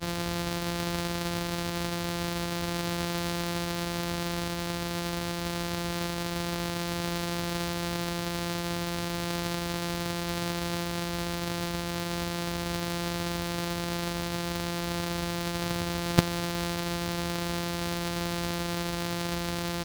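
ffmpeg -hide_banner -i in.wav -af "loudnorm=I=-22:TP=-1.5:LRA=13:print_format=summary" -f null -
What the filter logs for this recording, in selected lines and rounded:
Input Integrated:    -31.3 LUFS
Input True Peak:      -4.4 dBTP
Input LRA:             1.4 LU
Input Threshold:     -41.3 LUFS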